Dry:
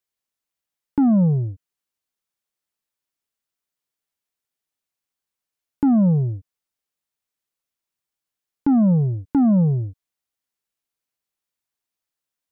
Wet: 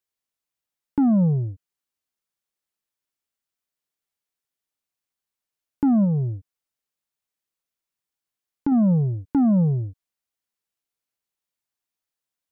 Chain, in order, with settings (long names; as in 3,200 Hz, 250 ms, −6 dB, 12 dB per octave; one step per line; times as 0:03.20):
0:06.04–0:08.72: downward compressor, threshold −17 dBFS, peak gain reduction 3 dB
level −2 dB